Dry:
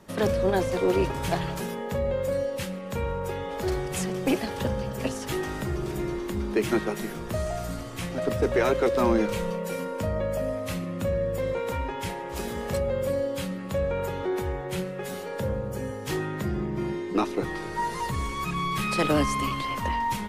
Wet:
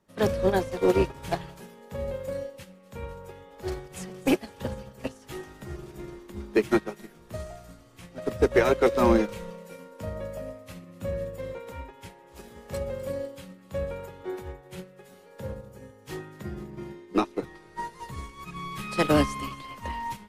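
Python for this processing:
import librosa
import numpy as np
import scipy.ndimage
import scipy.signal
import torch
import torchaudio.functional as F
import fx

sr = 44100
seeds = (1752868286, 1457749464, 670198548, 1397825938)

p1 = x + fx.echo_wet_highpass(x, sr, ms=252, feedback_pct=68, hz=2900.0, wet_db=-13.0, dry=0)
p2 = fx.upward_expand(p1, sr, threshold_db=-34.0, expansion=2.5)
y = F.gain(torch.from_numpy(p2), 4.5).numpy()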